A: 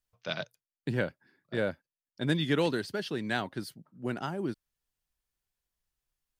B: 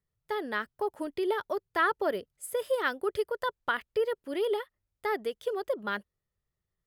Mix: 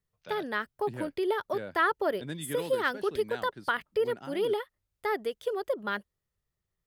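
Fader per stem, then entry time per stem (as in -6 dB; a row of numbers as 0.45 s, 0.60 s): -10.0 dB, +0.5 dB; 0.00 s, 0.00 s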